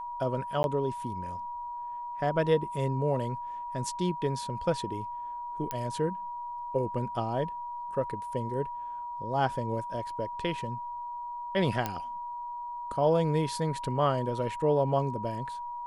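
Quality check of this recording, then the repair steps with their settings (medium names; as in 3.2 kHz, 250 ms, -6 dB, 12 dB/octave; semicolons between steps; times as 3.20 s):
whine 960 Hz -35 dBFS
0.63–0.64 s: dropout 11 ms
5.71 s: pop -17 dBFS
11.86 s: pop -15 dBFS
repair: de-click; band-stop 960 Hz, Q 30; interpolate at 0.63 s, 11 ms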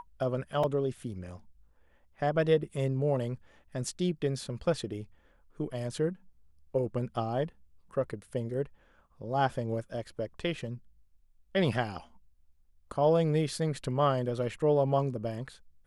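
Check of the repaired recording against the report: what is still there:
nothing left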